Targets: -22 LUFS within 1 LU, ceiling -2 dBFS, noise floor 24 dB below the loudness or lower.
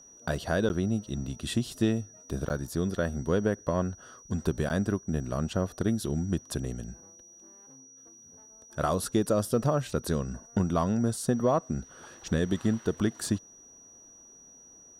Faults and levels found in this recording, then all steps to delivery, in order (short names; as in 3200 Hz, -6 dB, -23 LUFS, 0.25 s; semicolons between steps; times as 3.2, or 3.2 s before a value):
dropouts 3; longest dropout 9.7 ms; steady tone 5800 Hz; tone level -51 dBFS; loudness -30.0 LUFS; peak -13.0 dBFS; loudness target -22.0 LUFS
-> interpolate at 0.69/2.49/4.69, 9.7 ms; notch 5800 Hz, Q 30; gain +8 dB